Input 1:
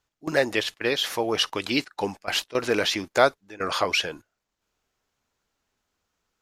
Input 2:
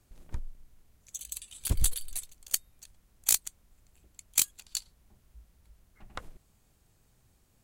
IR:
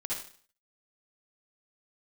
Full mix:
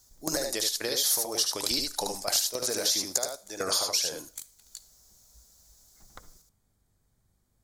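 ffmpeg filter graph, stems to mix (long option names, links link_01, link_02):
-filter_complex "[0:a]equalizer=frequency=620:width=1.4:gain=8.5,acompressor=threshold=-27dB:ratio=6,aexciter=amount=13.6:drive=5.2:freq=4200,volume=-1dB,asplit=3[link_01][link_02][link_03];[link_02]volume=-20dB[link_04];[link_03]volume=-4dB[link_05];[1:a]acompressor=threshold=-33dB:ratio=4,equalizer=frequency=2700:width_type=o:width=0.26:gain=-12.5,aeval=exprs='val(0)+0.000398*(sin(2*PI*50*n/s)+sin(2*PI*2*50*n/s)/2+sin(2*PI*3*50*n/s)/3+sin(2*PI*4*50*n/s)/4+sin(2*PI*5*50*n/s)/5)':channel_layout=same,volume=-7dB,asplit=2[link_06][link_07];[link_07]volume=-20dB[link_08];[2:a]atrim=start_sample=2205[link_09];[link_04][link_08]amix=inputs=2:normalize=0[link_10];[link_10][link_09]afir=irnorm=-1:irlink=0[link_11];[link_05]aecho=0:1:74:1[link_12];[link_01][link_06][link_11][link_12]amix=inputs=4:normalize=0,acompressor=threshold=-27dB:ratio=2.5"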